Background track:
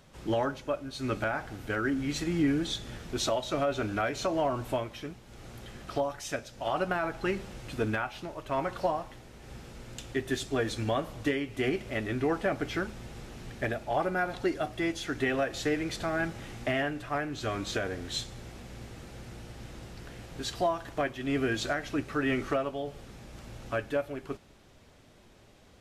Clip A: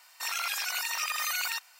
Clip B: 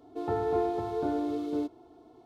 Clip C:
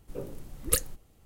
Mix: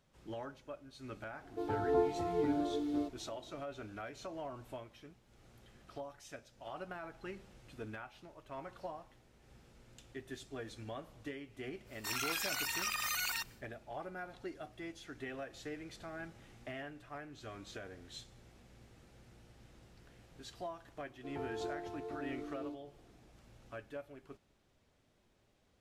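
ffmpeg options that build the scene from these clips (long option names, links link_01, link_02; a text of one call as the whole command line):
ffmpeg -i bed.wav -i cue0.wav -i cue1.wav -filter_complex "[2:a]asplit=2[link_01][link_02];[0:a]volume=-15.5dB[link_03];[link_01]asplit=2[link_04][link_05];[link_05]adelay=7.8,afreqshift=-2.6[link_06];[link_04][link_06]amix=inputs=2:normalize=1[link_07];[1:a]acontrast=39[link_08];[link_07]atrim=end=2.25,asetpts=PTS-STARTPTS,volume=-1dB,afade=type=in:duration=0.004:curve=hsin,afade=type=out:start_time=2.246:duration=0.004:curve=hsin,adelay=1410[link_09];[link_08]atrim=end=1.79,asetpts=PTS-STARTPTS,volume=-11dB,afade=type=in:duration=0.1,afade=type=out:start_time=1.69:duration=0.1,adelay=11840[link_10];[link_02]atrim=end=2.25,asetpts=PTS-STARTPTS,volume=-13.5dB,afade=type=in:duration=0.004:curve=hsin,afade=type=out:start_time=2.246:duration=0.004:curve=hsin,adelay=21080[link_11];[link_03][link_09][link_10][link_11]amix=inputs=4:normalize=0" out.wav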